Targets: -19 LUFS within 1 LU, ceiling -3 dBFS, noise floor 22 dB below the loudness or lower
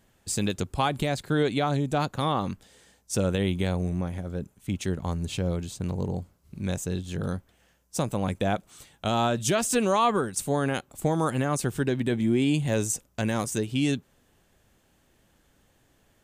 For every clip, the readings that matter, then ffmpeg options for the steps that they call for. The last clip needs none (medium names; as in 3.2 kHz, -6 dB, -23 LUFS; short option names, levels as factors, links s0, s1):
loudness -27.5 LUFS; peak level -13.5 dBFS; loudness target -19.0 LUFS
-> -af "volume=2.66"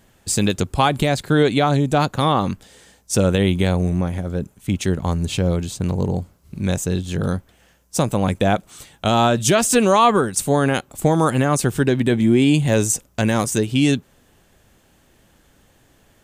loudness -19.0 LUFS; peak level -5.0 dBFS; noise floor -57 dBFS